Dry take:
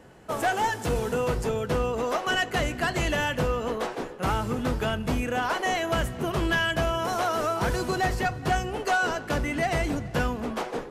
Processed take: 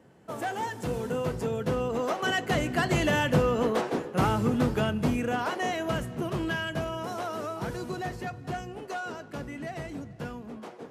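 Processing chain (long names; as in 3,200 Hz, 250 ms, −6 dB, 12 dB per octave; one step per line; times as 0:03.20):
source passing by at 0:03.69, 7 m/s, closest 9 metres
high-pass filter 120 Hz 12 dB per octave
low-shelf EQ 370 Hz +8.5 dB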